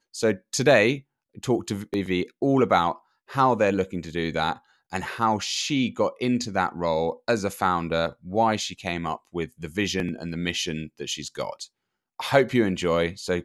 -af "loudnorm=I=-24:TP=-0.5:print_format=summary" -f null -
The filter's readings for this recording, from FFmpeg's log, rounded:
Input Integrated:    -25.2 LUFS
Input True Peak:      -3.7 dBTP
Input LRA:             3.0 LU
Input Threshold:     -35.5 LUFS